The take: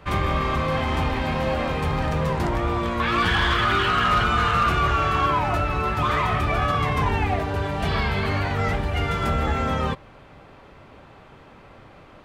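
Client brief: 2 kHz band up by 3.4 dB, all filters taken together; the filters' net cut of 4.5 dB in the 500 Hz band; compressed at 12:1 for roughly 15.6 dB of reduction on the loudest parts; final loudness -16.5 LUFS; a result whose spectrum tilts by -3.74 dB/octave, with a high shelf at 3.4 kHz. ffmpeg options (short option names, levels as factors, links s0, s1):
-af "equalizer=f=500:t=o:g=-6,equalizer=f=2000:t=o:g=6,highshelf=f=3400:g=-4,acompressor=threshold=0.0251:ratio=12,volume=8.91"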